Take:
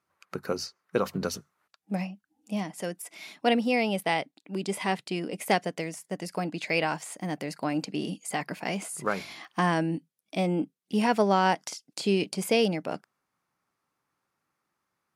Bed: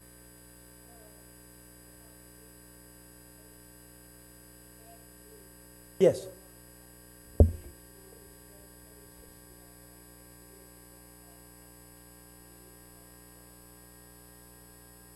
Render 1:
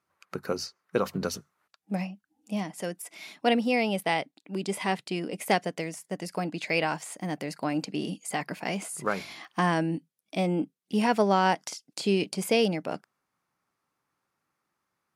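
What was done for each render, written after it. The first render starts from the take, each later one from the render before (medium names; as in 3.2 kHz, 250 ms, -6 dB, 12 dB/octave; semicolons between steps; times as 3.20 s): no audible change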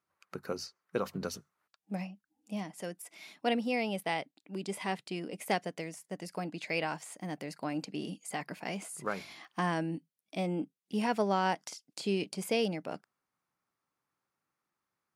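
trim -6.5 dB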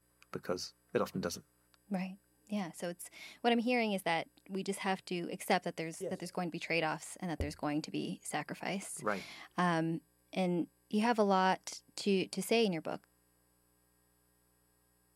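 add bed -19.5 dB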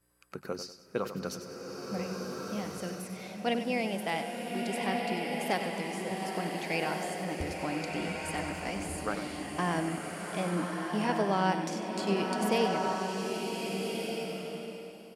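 feedback delay 96 ms, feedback 35%, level -10.5 dB; swelling reverb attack 1550 ms, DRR 0 dB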